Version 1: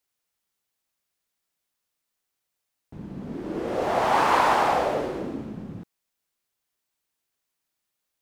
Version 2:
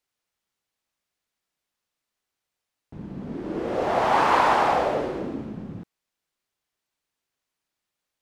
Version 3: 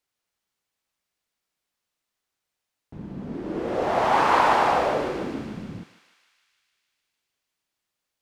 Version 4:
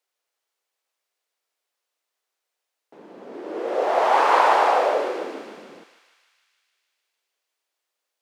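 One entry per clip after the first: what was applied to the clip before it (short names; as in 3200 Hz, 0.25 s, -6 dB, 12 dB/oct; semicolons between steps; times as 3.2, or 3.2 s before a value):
high shelf 8600 Hz -10.5 dB; gain +1 dB
thinning echo 0.151 s, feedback 76%, high-pass 980 Hz, level -9 dB
ladder high-pass 360 Hz, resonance 30%; gain +7.5 dB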